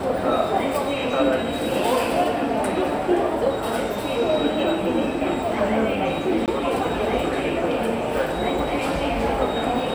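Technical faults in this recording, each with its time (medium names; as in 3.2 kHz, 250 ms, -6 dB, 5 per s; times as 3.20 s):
6.46–6.48 s: dropout 18 ms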